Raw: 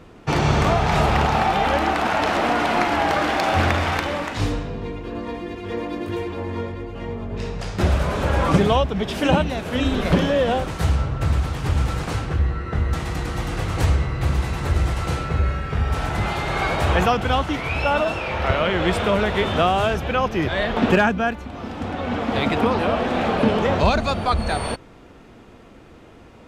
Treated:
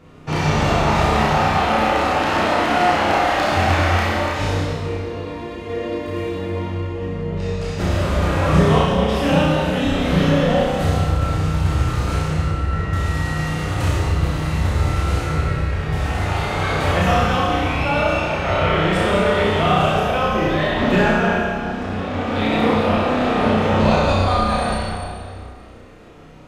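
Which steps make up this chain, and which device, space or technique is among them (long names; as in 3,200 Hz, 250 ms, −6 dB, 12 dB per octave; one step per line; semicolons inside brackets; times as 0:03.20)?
tunnel (flutter between parallel walls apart 5.5 metres, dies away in 0.51 s; convolution reverb RT60 2.2 s, pre-delay 15 ms, DRR −4 dB)
level −5 dB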